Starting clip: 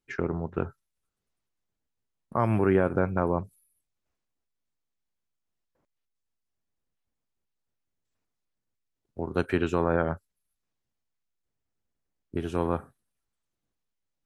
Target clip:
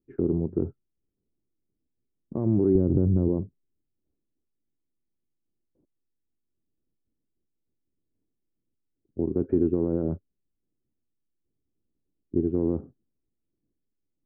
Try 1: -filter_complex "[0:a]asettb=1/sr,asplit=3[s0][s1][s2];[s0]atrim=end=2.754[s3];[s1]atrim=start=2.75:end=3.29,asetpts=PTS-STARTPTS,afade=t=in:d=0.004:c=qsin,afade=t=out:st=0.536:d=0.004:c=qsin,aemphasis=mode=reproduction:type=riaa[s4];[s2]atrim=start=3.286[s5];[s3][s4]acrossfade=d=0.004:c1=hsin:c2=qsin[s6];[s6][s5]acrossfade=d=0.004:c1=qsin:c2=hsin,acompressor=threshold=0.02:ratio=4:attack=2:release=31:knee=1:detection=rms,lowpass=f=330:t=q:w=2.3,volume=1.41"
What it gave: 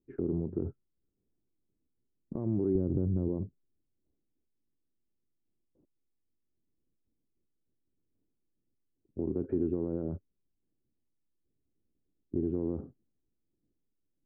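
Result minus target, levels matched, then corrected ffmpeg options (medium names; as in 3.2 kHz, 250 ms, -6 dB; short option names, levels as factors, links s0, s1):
compression: peak gain reduction +8 dB
-filter_complex "[0:a]asettb=1/sr,asplit=3[s0][s1][s2];[s0]atrim=end=2.754[s3];[s1]atrim=start=2.75:end=3.29,asetpts=PTS-STARTPTS,afade=t=in:d=0.004:c=qsin,afade=t=out:st=0.536:d=0.004:c=qsin,aemphasis=mode=reproduction:type=riaa[s4];[s2]atrim=start=3.286[s5];[s3][s4]acrossfade=d=0.004:c1=hsin:c2=qsin[s6];[s6][s5]acrossfade=d=0.004:c1=qsin:c2=hsin,acompressor=threshold=0.0668:ratio=4:attack=2:release=31:knee=1:detection=rms,lowpass=f=330:t=q:w=2.3,volume=1.41"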